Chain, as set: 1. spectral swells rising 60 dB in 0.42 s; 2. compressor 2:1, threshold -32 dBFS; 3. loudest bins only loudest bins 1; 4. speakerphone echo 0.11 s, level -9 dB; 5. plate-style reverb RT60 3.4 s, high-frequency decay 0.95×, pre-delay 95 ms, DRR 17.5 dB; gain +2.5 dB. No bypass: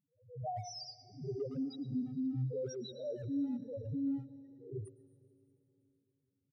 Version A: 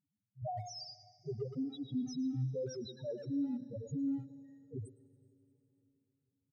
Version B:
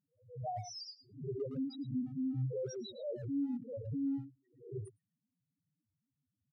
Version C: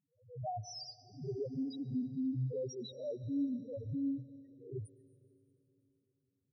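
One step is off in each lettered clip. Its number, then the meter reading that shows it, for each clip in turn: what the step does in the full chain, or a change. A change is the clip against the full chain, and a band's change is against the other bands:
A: 1, momentary loudness spread change +1 LU; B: 5, echo-to-direct -15.5 dB to -20.0 dB; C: 4, echo-to-direct -15.5 dB to -17.5 dB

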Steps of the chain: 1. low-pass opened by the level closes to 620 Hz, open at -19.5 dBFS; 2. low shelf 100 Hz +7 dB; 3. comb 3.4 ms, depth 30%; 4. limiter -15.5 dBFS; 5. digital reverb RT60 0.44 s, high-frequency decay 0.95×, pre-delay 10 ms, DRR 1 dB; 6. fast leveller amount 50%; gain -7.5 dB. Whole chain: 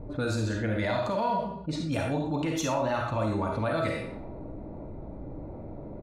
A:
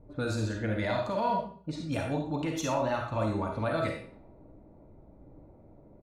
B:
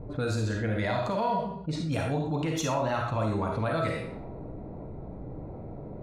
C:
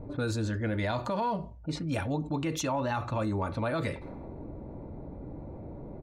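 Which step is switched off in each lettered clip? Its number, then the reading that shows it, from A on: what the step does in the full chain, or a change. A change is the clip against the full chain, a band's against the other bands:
6, momentary loudness spread change -9 LU; 3, 125 Hz band +2.0 dB; 5, 500 Hz band -2.0 dB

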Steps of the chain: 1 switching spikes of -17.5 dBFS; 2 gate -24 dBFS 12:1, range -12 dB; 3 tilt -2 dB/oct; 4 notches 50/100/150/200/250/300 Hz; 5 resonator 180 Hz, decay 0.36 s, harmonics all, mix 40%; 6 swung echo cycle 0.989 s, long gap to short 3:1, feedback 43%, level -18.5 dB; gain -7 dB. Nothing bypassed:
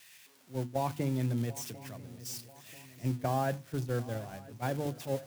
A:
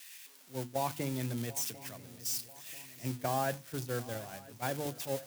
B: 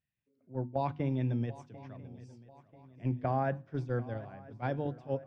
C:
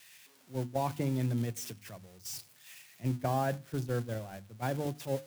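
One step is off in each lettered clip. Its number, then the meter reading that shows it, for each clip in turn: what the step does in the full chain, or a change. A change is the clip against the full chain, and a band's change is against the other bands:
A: 3, 8 kHz band +7.0 dB; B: 1, distortion -5 dB; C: 6, echo-to-direct -16.0 dB to none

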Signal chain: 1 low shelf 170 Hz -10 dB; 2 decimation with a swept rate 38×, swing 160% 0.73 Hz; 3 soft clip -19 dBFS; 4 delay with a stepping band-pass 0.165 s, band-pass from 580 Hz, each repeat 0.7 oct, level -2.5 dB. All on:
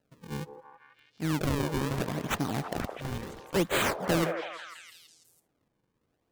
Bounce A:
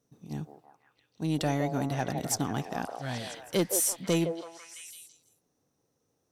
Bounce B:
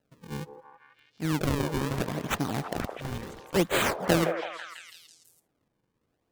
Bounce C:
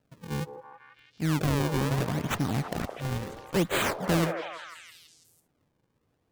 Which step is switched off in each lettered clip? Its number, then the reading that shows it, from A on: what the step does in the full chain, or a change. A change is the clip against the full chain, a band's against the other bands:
2, 8 kHz band +10.0 dB; 3, distortion -15 dB; 1, 125 Hz band +4.0 dB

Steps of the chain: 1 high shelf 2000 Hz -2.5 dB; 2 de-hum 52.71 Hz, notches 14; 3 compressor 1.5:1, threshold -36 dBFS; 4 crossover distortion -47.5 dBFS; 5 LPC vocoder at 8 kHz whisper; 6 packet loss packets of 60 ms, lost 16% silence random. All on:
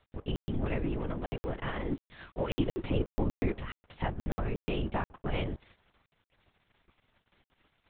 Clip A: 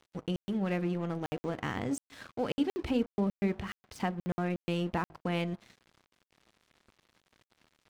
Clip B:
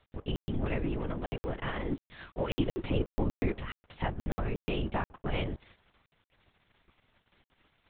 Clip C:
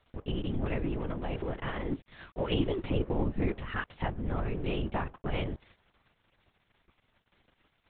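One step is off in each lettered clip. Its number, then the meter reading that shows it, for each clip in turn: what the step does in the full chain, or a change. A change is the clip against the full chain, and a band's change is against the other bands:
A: 5, 125 Hz band -2.5 dB; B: 1, 4 kHz band +1.5 dB; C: 6, 4 kHz band +1.5 dB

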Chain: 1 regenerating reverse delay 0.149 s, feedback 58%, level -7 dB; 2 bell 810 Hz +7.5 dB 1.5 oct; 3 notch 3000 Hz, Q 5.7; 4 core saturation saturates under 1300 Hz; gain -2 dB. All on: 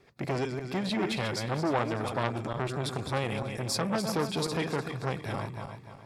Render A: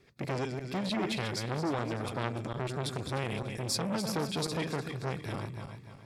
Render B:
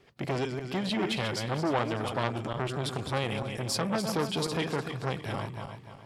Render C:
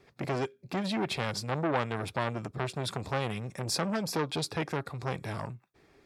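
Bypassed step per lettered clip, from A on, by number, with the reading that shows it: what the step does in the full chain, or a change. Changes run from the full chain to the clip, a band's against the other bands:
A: 2, loudness change -3.0 LU; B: 3, 4 kHz band +2.0 dB; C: 1, loudness change -1.5 LU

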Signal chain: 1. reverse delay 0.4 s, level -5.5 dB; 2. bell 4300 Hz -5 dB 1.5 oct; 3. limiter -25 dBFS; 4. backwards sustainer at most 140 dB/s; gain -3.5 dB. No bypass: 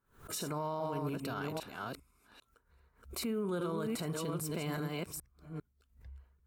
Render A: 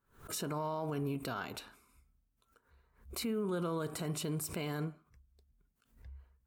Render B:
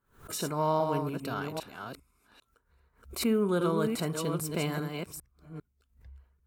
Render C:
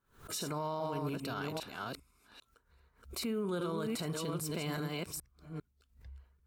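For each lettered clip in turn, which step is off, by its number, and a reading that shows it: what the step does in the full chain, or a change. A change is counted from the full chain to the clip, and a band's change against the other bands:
1, crest factor change +6.5 dB; 3, mean gain reduction 3.5 dB; 2, 4 kHz band +3.0 dB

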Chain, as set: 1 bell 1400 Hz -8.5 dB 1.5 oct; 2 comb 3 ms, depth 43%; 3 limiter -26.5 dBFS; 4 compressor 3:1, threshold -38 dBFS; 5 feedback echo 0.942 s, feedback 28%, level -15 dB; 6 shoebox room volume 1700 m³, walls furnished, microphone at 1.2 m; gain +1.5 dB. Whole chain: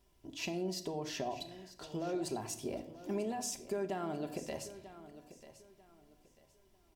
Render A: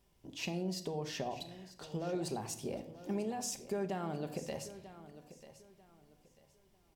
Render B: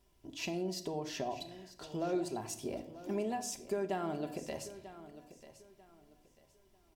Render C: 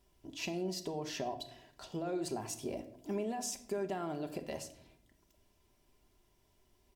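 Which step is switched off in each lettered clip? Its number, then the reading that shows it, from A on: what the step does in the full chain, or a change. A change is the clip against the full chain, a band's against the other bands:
2, 125 Hz band +4.0 dB; 3, mean gain reduction 1.5 dB; 5, momentary loudness spread change -8 LU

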